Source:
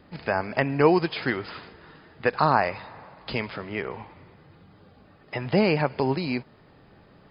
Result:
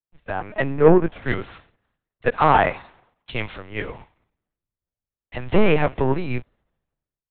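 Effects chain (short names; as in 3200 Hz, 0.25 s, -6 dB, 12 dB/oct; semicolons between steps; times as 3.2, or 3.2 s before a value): 0.61–1.22 LPF 1500 Hz -> 1000 Hz 6 dB/oct; sample leveller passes 2; AGC gain up to 5.5 dB; LPC vocoder at 8 kHz pitch kept; three-band expander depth 100%; gain -7 dB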